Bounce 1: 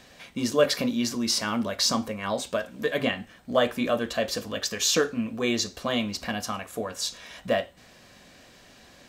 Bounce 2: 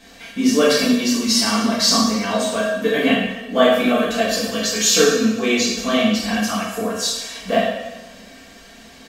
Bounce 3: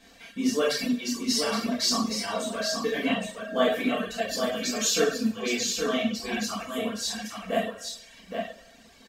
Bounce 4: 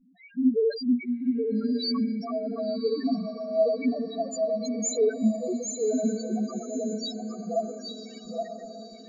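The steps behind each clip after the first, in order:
comb filter 4.4 ms, depth 68%; coupled-rooms reverb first 0.9 s, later 2.3 s, DRR −8 dB; level −1 dB
reverb reduction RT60 1.2 s; single-tap delay 819 ms −5.5 dB; level −8.5 dB
spectral peaks only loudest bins 1; feedback delay with all-pass diffusion 1,072 ms, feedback 41%, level −10 dB; level +8.5 dB

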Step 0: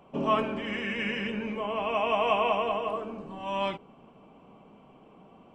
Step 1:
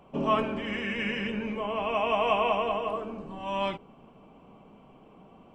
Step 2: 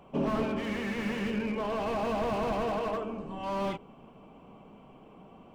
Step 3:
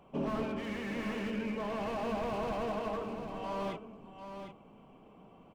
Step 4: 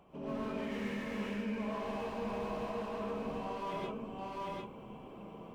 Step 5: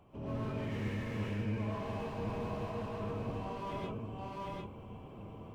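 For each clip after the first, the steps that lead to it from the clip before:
low-shelf EQ 77 Hz +7.5 dB
slew-rate limiting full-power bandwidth 23 Hz; level +1 dB
single-tap delay 751 ms −8.5 dB; level −5 dB
reversed playback; downward compressor 12 to 1, threshold −43 dBFS, peak gain reduction 13.5 dB; reversed playback; reverb whose tail is shaped and stops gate 160 ms rising, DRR −4.5 dB; level +2 dB
sub-octave generator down 1 octave, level +3 dB; level −2 dB

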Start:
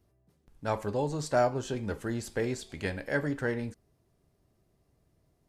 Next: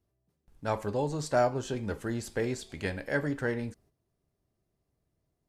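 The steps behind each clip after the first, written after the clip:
noise gate −60 dBFS, range −9 dB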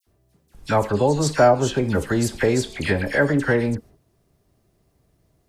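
in parallel at +0.5 dB: downward compressor, threshold −37 dBFS, peak gain reduction 15 dB
on the sum: all-pass dispersion lows, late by 68 ms, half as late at 1,900 Hz
level +9 dB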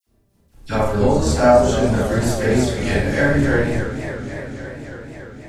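sub-octave generator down 1 octave, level +1 dB
four-comb reverb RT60 0.47 s, combs from 28 ms, DRR −5.5 dB
feedback echo with a swinging delay time 281 ms, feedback 78%, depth 165 cents, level −11.5 dB
level −5.5 dB

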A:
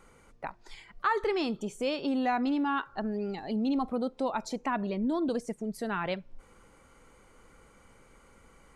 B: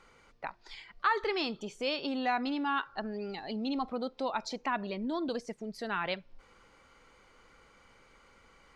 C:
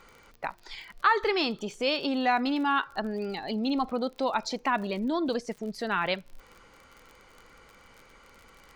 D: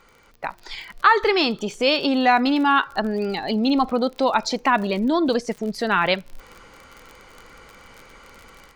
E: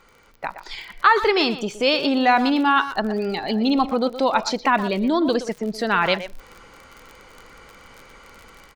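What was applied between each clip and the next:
drawn EQ curve 200 Hz 0 dB, 4,800 Hz +11 dB, 9,000 Hz −5 dB; level −6.5 dB
surface crackle 43 per second −45 dBFS; level +5.5 dB
automatic gain control gain up to 8.5 dB
far-end echo of a speakerphone 120 ms, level −11 dB

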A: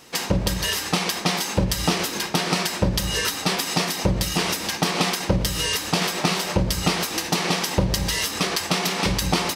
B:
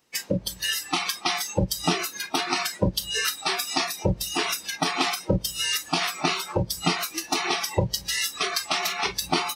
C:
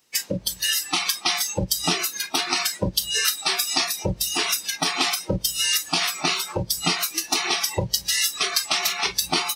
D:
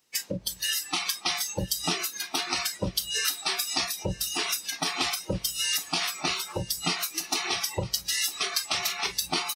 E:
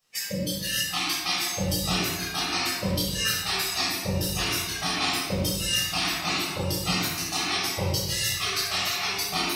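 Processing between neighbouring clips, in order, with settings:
noise reduction from a noise print of the clip's start 20 dB
high-shelf EQ 2,500 Hz +9 dB; level −2 dB
single-tap delay 958 ms −19 dB; level −5.5 dB
rectangular room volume 740 cubic metres, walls mixed, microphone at 6.1 metres; level −9 dB

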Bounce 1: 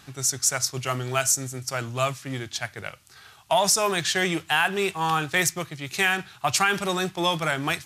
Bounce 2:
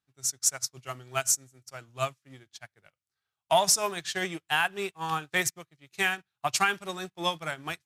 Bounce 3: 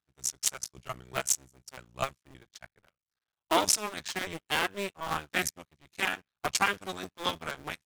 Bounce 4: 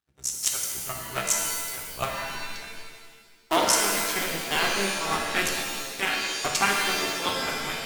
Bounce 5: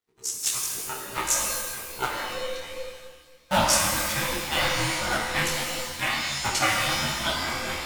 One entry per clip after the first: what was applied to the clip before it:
expander for the loud parts 2.5 to 1, over −43 dBFS
sub-harmonics by changed cycles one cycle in 2, muted
reverb with rising layers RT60 1.5 s, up +7 semitones, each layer −2 dB, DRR 0.5 dB; level +1.5 dB
frequency inversion band by band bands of 500 Hz; micro pitch shift up and down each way 48 cents; level +4 dB

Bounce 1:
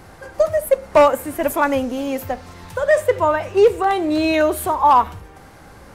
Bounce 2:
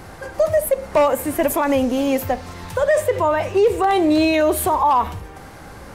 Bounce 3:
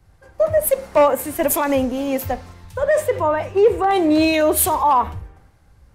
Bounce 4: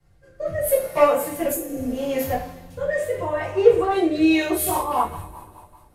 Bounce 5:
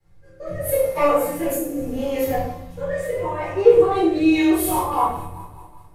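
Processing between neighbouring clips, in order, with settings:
brickwall limiter −13.5 dBFS, peak gain reduction 8.5 dB; dynamic equaliser 1,400 Hz, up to −5 dB, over −43 dBFS, Q 4.2; level +4.5 dB
multiband upward and downward expander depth 100%
healed spectral selection 0:01.55–0:01.83, 500–6,200 Hz after; coupled-rooms reverb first 0.41 s, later 2.5 s, from −22 dB, DRR −9 dB; rotating-speaker cabinet horn 0.75 Hz, later 5 Hz, at 0:04.03; level −10 dB
rectangular room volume 600 cubic metres, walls furnished, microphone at 4.1 metres; level −5.5 dB

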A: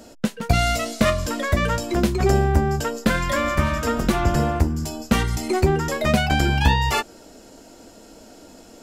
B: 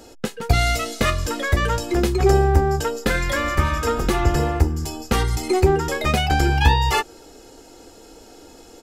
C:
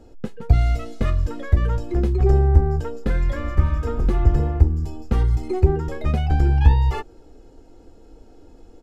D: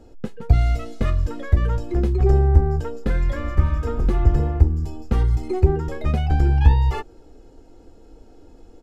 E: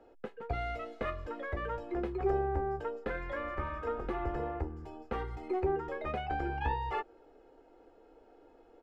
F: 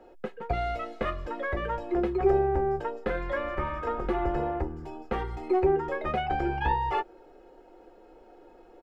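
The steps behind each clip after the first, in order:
comb filter 2.4 ms, depth 54%
spectral tilt −3.5 dB per octave; level −10 dB
no processing that can be heard
three-way crossover with the lows and the highs turned down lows −20 dB, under 370 Hz, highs −20 dB, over 2,900 Hz; level −3.5 dB
comb filter 5.5 ms, depth 40%; level +6 dB

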